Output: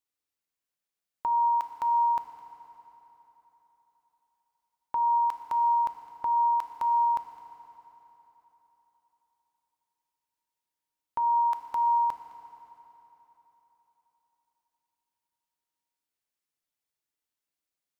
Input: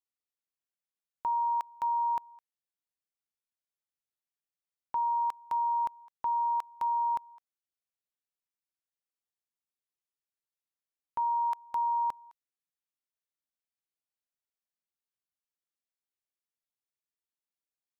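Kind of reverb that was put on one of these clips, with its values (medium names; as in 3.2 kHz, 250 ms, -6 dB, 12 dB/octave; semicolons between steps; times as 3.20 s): FDN reverb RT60 3.8 s, high-frequency decay 0.8×, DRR 5.5 dB; trim +3.5 dB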